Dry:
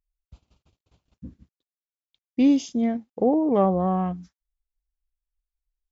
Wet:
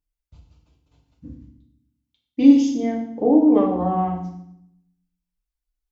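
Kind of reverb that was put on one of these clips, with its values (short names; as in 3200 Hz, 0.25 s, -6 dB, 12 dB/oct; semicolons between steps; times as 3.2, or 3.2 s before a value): FDN reverb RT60 0.69 s, low-frequency decay 1.55×, high-frequency decay 0.95×, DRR -2 dB; gain -2.5 dB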